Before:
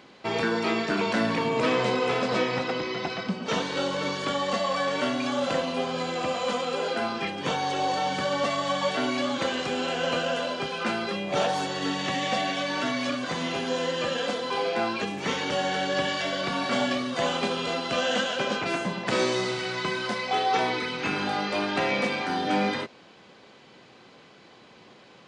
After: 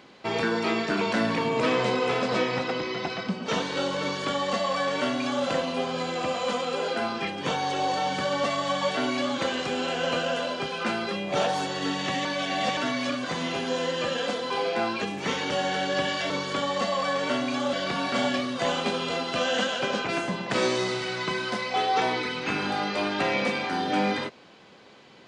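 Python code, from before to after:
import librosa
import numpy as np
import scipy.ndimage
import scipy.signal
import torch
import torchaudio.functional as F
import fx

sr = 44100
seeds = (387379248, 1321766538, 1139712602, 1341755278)

y = fx.edit(x, sr, fx.duplicate(start_s=4.02, length_s=1.43, to_s=16.3),
    fx.reverse_span(start_s=12.25, length_s=0.52), tone=tone)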